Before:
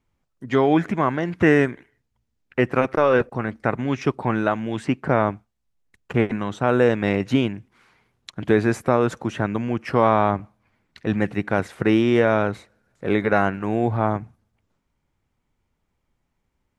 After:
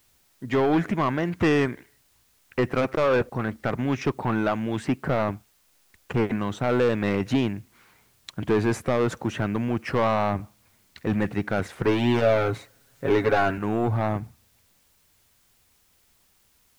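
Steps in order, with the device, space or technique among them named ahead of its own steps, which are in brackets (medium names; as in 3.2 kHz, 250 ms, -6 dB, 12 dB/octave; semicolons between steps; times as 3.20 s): open-reel tape (saturation -16 dBFS, distortion -9 dB; peaking EQ 80 Hz +3.5 dB; white noise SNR 38 dB); 11.83–13.58 s: comb 7.3 ms, depth 79%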